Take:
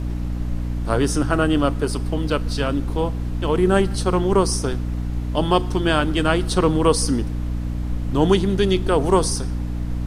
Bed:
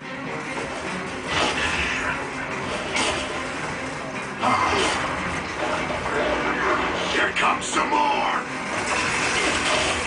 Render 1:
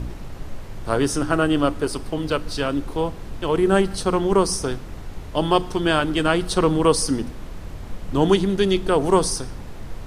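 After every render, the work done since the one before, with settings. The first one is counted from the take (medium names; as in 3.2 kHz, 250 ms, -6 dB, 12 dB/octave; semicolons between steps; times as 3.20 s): de-hum 60 Hz, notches 5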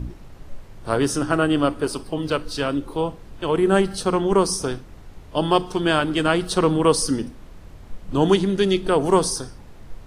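noise print and reduce 8 dB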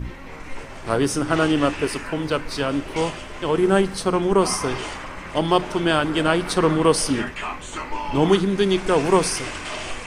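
add bed -9.5 dB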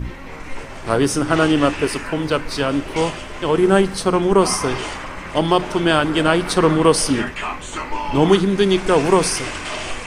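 trim +3.5 dB; peak limiter -2 dBFS, peak gain reduction 2.5 dB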